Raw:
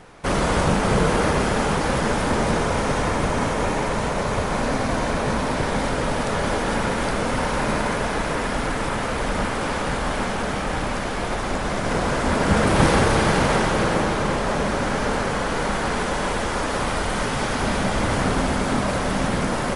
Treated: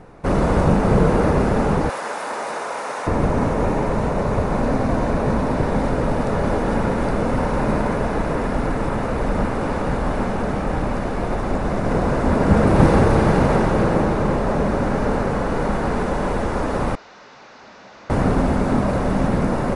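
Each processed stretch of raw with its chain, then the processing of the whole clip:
1.89–3.07 HPF 800 Hz + high shelf 5200 Hz +6 dB
16.95–18.1 delta modulation 32 kbps, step -36.5 dBFS + differentiator + Doppler distortion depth 0.29 ms
whole clip: tilt shelf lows +7.5 dB, about 1400 Hz; notch 3200 Hz, Q 12; gain -2.5 dB

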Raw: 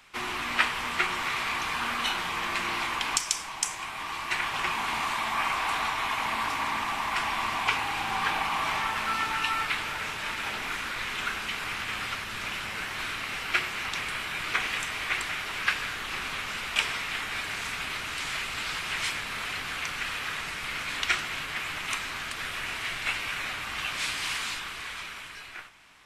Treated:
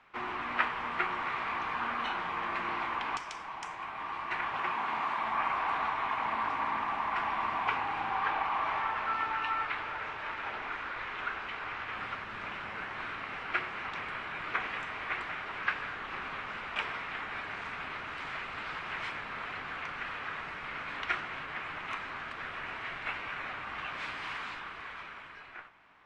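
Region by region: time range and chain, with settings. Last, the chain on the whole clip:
4.58–5.23 HPF 41 Hz + low shelf 87 Hz -10 dB
8.09–11.97 LPF 7800 Hz + bell 190 Hz -7.5 dB 0.87 oct
whole clip: LPF 1300 Hz 12 dB/oct; tilt +2 dB/oct

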